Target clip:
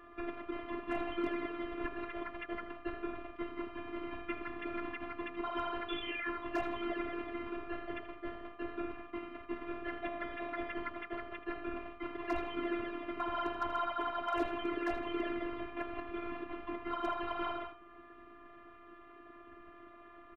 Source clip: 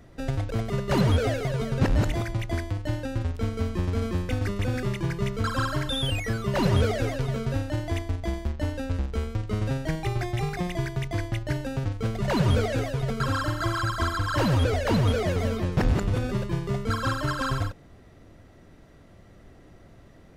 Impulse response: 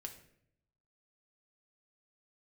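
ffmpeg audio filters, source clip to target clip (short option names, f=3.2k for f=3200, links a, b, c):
-filter_complex "[0:a]aemphasis=mode=production:type=50fm,acompressor=threshold=-39dB:ratio=2,highpass=f=320:t=q:w=0.5412,highpass=f=320:t=q:w=1.307,lowpass=f=2.9k:t=q:w=0.5176,lowpass=f=2.9k:t=q:w=0.7071,lowpass=f=2.9k:t=q:w=1.932,afreqshift=-150,afftfilt=real='hypot(re,im)*cos(2*PI*random(0))':imag='hypot(re,im)*sin(2*PI*random(1))':win_size=512:overlap=0.75,asplit=3[a][b][c];[b]asetrate=29433,aresample=44100,atempo=1.49831,volume=-5dB[d];[c]asetrate=35002,aresample=44100,atempo=1.25992,volume=-8dB[e];[a][d][e]amix=inputs=3:normalize=0,afftfilt=real='hypot(re,im)*cos(PI*b)':imag='0':win_size=512:overlap=0.75,asoftclip=type=hard:threshold=-34dB,aecho=1:1:80|160|240|320:0.224|0.0828|0.0306|0.0113,aeval=exprs='val(0)+0.000355*sin(2*PI*1200*n/s)':c=same,volume=10.5dB"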